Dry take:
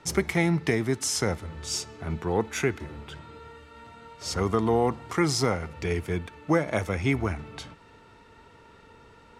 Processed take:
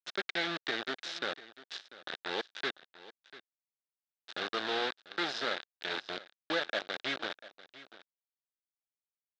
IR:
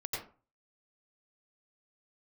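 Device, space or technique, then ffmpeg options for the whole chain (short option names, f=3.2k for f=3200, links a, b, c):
hand-held game console: -af "equalizer=f=570:t=o:w=0.32:g=4,acrusher=bits=3:mix=0:aa=0.000001,highpass=440,equalizer=f=450:t=q:w=4:g=-3,equalizer=f=1k:t=q:w=4:g=-7,equalizer=f=1.6k:t=q:w=4:g=8,equalizer=f=2.2k:t=q:w=4:g=-3,equalizer=f=3.7k:t=q:w=4:g=10,lowpass=f=4.5k:w=0.5412,lowpass=f=4.5k:w=1.3066,aecho=1:1:693:0.133,volume=-8.5dB"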